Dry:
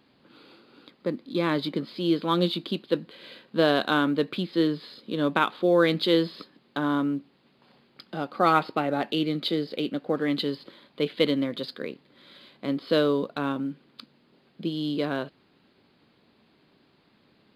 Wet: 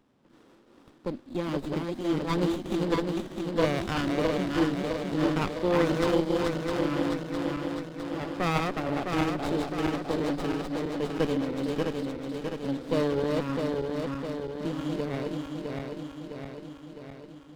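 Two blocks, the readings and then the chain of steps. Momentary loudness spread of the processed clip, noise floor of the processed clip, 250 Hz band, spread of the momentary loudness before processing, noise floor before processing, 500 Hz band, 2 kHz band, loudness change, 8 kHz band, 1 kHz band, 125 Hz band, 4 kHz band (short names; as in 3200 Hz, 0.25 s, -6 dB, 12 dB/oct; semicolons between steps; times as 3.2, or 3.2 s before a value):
11 LU, -57 dBFS, -1.0 dB, 13 LU, -64 dBFS, -1.5 dB, -3.5 dB, -3.0 dB, n/a, -3.5 dB, +2.0 dB, -7.0 dB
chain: regenerating reverse delay 0.329 s, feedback 77%, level -2.5 dB; running maximum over 17 samples; gain -4 dB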